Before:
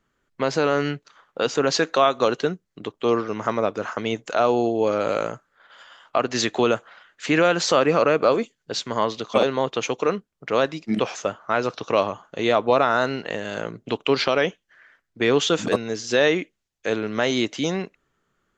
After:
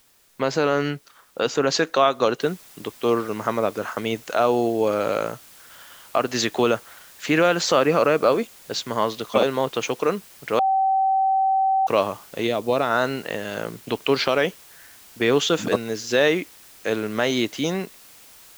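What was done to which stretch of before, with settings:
0:02.41: noise floor change −59 dB −48 dB
0:10.59–0:11.87: beep over 770 Hz −16.5 dBFS
0:12.46–0:12.90: parametric band 1,200 Hz −12.5 dB → −4 dB 1.9 octaves

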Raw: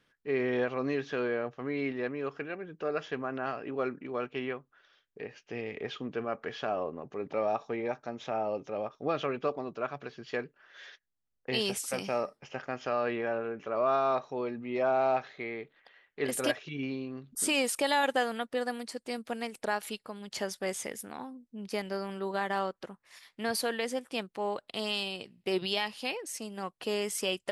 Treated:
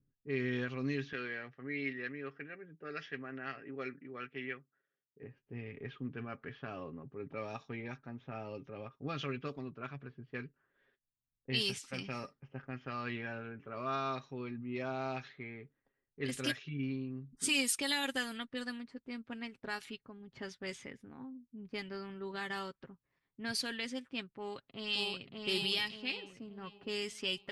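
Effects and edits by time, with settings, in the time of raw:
0:01.13–0:05.23: loudspeaker in its box 210–7,500 Hz, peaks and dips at 230 Hz −6 dB, 350 Hz −3 dB, 1,000 Hz −7 dB, 1,900 Hz +8 dB, 5,400 Hz +6 dB
0:24.34–0:25.38: delay throw 580 ms, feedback 45%, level −1.5 dB
whole clip: low-pass that shuts in the quiet parts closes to 380 Hz, open at −25.5 dBFS; guitar amp tone stack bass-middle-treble 6-0-2; comb filter 7.4 ms, depth 42%; level +15 dB

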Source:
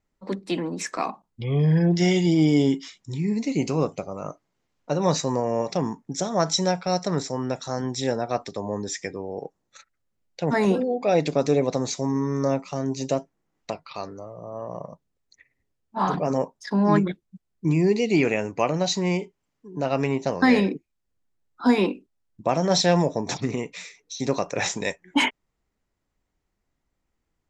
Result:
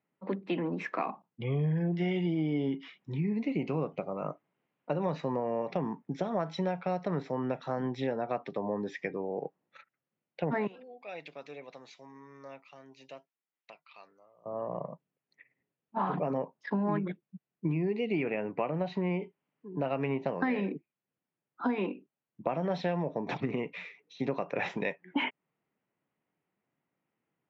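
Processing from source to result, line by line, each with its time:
0:10.67–0:14.46: first-order pre-emphasis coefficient 0.97
0:18.23–0:19.22: high-shelf EQ 4,500 Hz −12 dB
whole clip: Chebyshev band-pass filter 140–2,800 Hz, order 3; downward compressor, threshold −26 dBFS; level −1.5 dB

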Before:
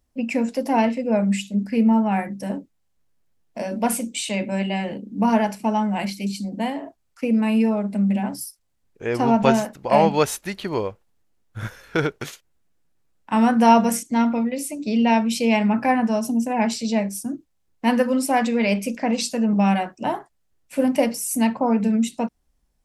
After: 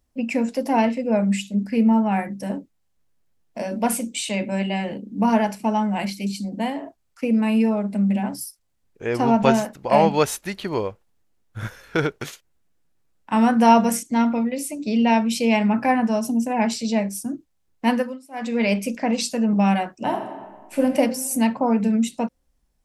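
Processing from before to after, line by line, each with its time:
0:17.89–0:18.61: duck −24 dB, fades 0.30 s
0:19.98–0:20.87: thrown reverb, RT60 1.5 s, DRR 5 dB

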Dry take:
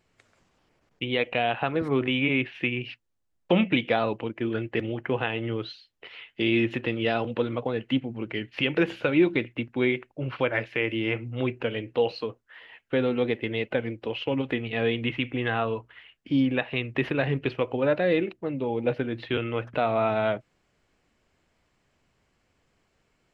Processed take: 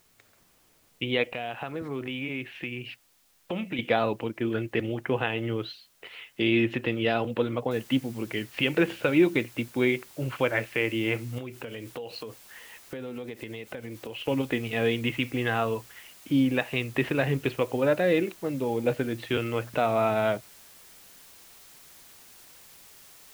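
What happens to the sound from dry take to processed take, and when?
0:01.28–0:03.79: downward compressor 2 to 1, threshold −36 dBFS
0:07.71: noise floor change −65 dB −52 dB
0:11.38–0:14.28: downward compressor 12 to 1, threshold −33 dBFS

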